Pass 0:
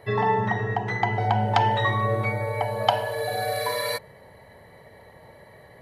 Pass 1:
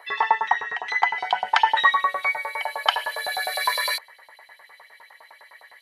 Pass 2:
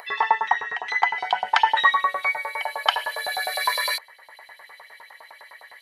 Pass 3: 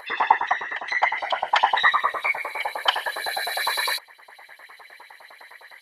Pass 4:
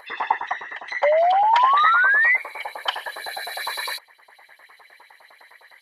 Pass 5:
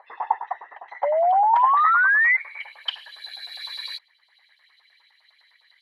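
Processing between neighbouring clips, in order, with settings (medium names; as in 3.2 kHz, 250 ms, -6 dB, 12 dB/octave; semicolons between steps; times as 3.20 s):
LFO high-pass saw up 9.8 Hz 840–4400 Hz; trim +3 dB
upward compressor, threshold -39 dBFS
whisper effect
painted sound rise, 1.03–2.37 s, 560–2100 Hz -13 dBFS; trim -4 dB
band-pass sweep 790 Hz -> 3.7 kHz, 1.47–3.01 s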